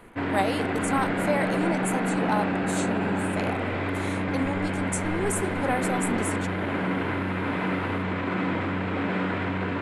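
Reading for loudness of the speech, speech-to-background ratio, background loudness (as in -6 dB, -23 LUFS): -31.0 LUFS, -3.5 dB, -27.5 LUFS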